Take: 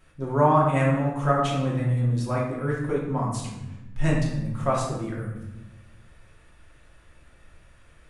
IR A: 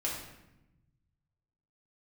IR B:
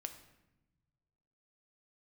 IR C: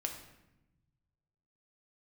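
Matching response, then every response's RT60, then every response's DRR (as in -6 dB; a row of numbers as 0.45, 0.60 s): A; 0.90, 1.0, 0.95 s; -4.5, 6.5, 2.5 dB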